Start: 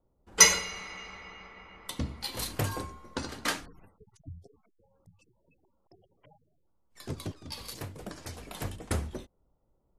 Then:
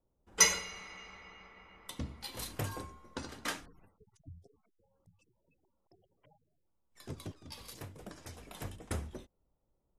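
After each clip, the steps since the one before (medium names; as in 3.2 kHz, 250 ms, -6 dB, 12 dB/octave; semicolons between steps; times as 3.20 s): band-stop 4.4 kHz, Q 14; trim -6.5 dB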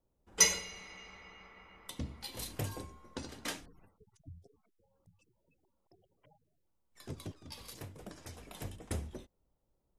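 dynamic bell 1.3 kHz, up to -7 dB, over -56 dBFS, Q 1.3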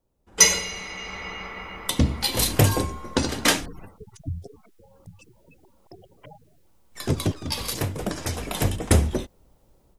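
level rider gain up to 15 dB; trim +5 dB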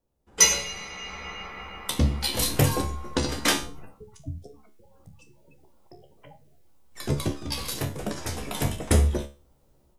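feedback comb 71 Hz, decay 0.33 s, harmonics all, mix 80%; trim +4 dB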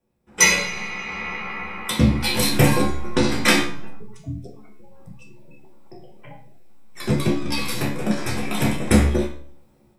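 reverberation RT60 0.50 s, pre-delay 3 ms, DRR -3 dB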